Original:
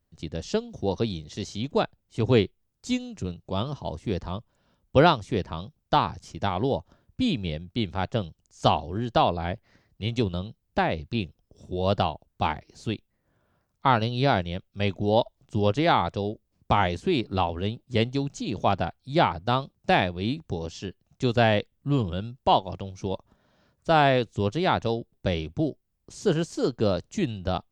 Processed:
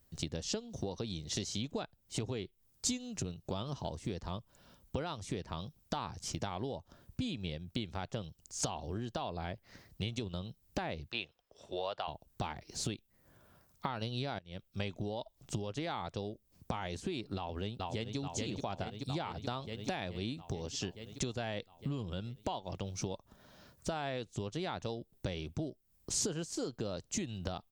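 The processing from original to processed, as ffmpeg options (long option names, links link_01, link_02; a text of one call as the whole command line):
ffmpeg -i in.wav -filter_complex "[0:a]asettb=1/sr,asplit=3[link_01][link_02][link_03];[link_01]atrim=end=11.114[link_04];[link_02]atrim=start=11.11:end=12.08,asetpts=PTS-STARTPTS,afade=type=in:duration=0.004:curve=qsin,afade=type=out:start_time=0.966:duration=0.004:curve=qsin,acrossover=split=520 3900:gain=0.0708 1 0.158[link_05][link_06][link_07];[link_05][link_06][link_07]amix=inputs=3:normalize=0[link_08];[link_03]atrim=start=12.076[link_09];[link_04][link_08]acrossfade=duration=0.004:curve1=hsin:curve2=qsin[link_10];[link_10][link_09]acrossfade=duration=0.004:curve1=qsin:curve2=hsin,asplit=2[link_11][link_12];[link_12]afade=type=in:start_time=17.36:duration=0.01,afade=type=out:start_time=18.17:duration=0.01,aecho=0:1:430|860|1290|1720|2150|2580|3010|3440|3870|4300|4730:0.398107|0.278675|0.195073|0.136551|0.0955855|0.0669099|0.0468369|0.0327858|0.0229501|0.0160651|0.0112455[link_13];[link_11][link_13]amix=inputs=2:normalize=0,asplit=2[link_14][link_15];[link_14]atrim=end=14.39,asetpts=PTS-STARTPTS,afade=type=out:start_time=14.386:duration=0.004:curve=hsin:silence=0.0707946[link_16];[link_15]atrim=start=14.39,asetpts=PTS-STARTPTS,afade=type=in:duration=0.71:silence=0.0707946[link_17];[link_16][link_17]concat=n=2:v=0:a=1,alimiter=limit=-16dB:level=0:latency=1:release=99,acompressor=threshold=-39dB:ratio=16,highshelf=frequency=5500:gain=11,volume=4.5dB" out.wav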